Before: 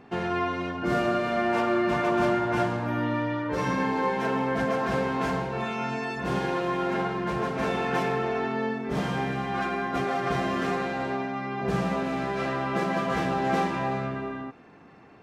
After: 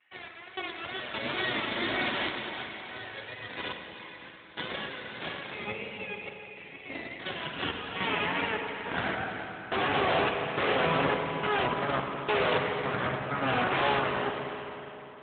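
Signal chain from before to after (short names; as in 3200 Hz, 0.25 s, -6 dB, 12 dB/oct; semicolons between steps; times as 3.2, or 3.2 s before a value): 5.55–7.19 spectral delete 500–1800 Hz; 11.52–13.31 negative-ratio compressor -29 dBFS, ratio -0.5; random-step tremolo, depth 100%; wow and flutter 120 cents; high-pass sweep 2100 Hz -> 500 Hz, 6.95–9.73; added harmonics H 2 -31 dB, 3 -28 dB, 6 -38 dB, 8 -6 dB, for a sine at -16 dBFS; on a send: multi-head echo 0.105 s, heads first and third, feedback 45%, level -16 dB; on the sum: spring tank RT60 3.3 s, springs 37/50 ms, chirp 35 ms, DRR 3 dB; gain -2.5 dB; AMR-NB 12.2 kbps 8000 Hz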